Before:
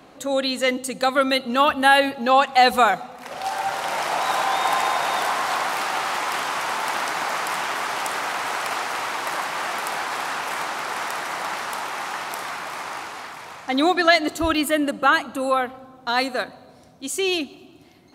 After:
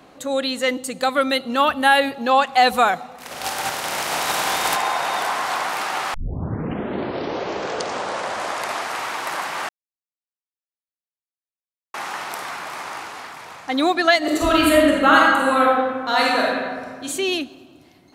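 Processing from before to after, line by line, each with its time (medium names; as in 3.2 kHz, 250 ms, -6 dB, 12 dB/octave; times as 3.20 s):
3.18–4.75 s: spectral contrast reduction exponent 0.61
6.14 s: tape start 2.88 s
9.69–11.94 s: mute
14.18–17.05 s: reverb throw, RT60 1.7 s, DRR -4.5 dB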